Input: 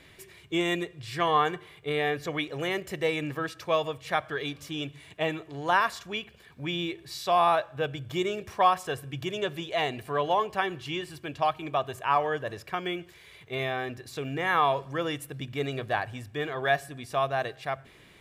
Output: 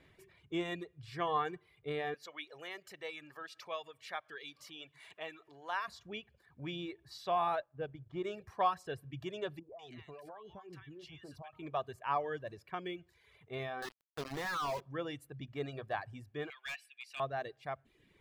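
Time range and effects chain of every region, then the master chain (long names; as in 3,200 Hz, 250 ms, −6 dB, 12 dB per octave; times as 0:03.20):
0:02.14–0:05.88: upward compression, threshold −28 dBFS + high-pass filter 1,400 Hz 6 dB per octave + one half of a high-frequency compander decoder only
0:07.60–0:08.24: mu-law and A-law mismatch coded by A + head-to-tape spacing loss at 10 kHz 24 dB
0:09.59–0:11.53: parametric band 5,300 Hz +5 dB 0.86 octaves + downward compressor 10 to 1, threshold −36 dBFS + multiband delay without the direct sound lows, highs 200 ms, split 1,100 Hz
0:13.82–0:14.81: Chebyshev low-pass with heavy ripple 5,000 Hz, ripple 9 dB + log-companded quantiser 2 bits
0:16.50–0:17.20: high-pass with resonance 2,500 Hz, resonance Q 5.6 + hard clipping −26.5 dBFS
whole clip: high-shelf EQ 2,600 Hz −11 dB; reverb reduction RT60 0.75 s; dynamic equaliser 4,600 Hz, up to +6 dB, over −55 dBFS, Q 1.6; level −7.5 dB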